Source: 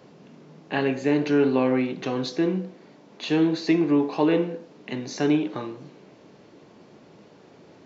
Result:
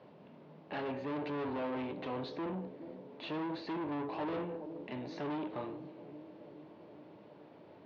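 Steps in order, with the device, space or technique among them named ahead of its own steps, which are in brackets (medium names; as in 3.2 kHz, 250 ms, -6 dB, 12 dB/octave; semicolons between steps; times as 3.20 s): analogue delay pedal into a guitar amplifier (bucket-brigade echo 419 ms, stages 2048, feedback 70%, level -19.5 dB; valve stage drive 29 dB, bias 0.3; cabinet simulation 88–3800 Hz, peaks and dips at 92 Hz +7 dB, 600 Hz +7 dB, 930 Hz +6 dB); trim -7.5 dB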